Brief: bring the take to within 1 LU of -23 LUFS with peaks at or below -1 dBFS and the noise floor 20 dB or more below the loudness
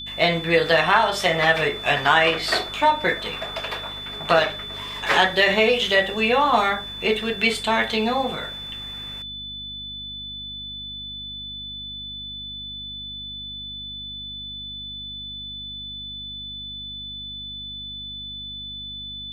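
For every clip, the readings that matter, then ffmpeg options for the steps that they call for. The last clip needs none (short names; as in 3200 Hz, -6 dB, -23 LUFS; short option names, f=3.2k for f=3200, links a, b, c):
hum 50 Hz; harmonics up to 250 Hz; hum level -41 dBFS; steady tone 3500 Hz; tone level -32 dBFS; loudness -23.5 LUFS; peak -3.0 dBFS; loudness target -23.0 LUFS
-> -af "bandreject=f=50:t=h:w=4,bandreject=f=100:t=h:w=4,bandreject=f=150:t=h:w=4,bandreject=f=200:t=h:w=4,bandreject=f=250:t=h:w=4"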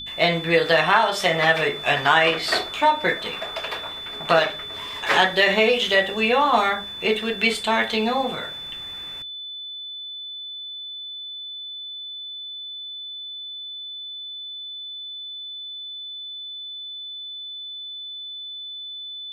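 hum none; steady tone 3500 Hz; tone level -32 dBFS
-> -af "bandreject=f=3.5k:w=30"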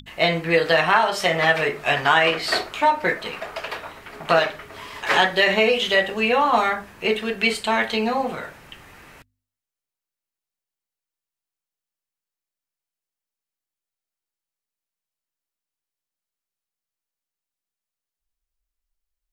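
steady tone none; loudness -20.0 LUFS; peak -2.5 dBFS; loudness target -23.0 LUFS
-> -af "volume=-3dB"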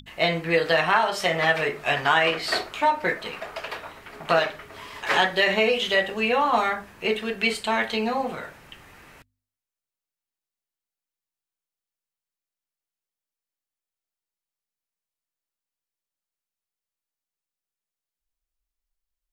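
loudness -23.0 LUFS; peak -5.5 dBFS; noise floor -91 dBFS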